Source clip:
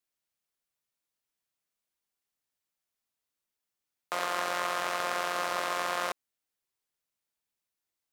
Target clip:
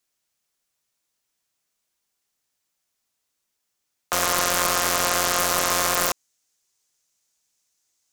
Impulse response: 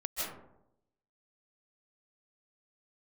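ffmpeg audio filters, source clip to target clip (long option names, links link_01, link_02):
-af "asetnsamples=nb_out_samples=441:pad=0,asendcmd='4.13 equalizer g 14.5',equalizer=frequency=6500:width=1.2:gain=5,aeval=exprs='(mod(4.47*val(0)+1,2)-1)/4.47':channel_layout=same,volume=8dB"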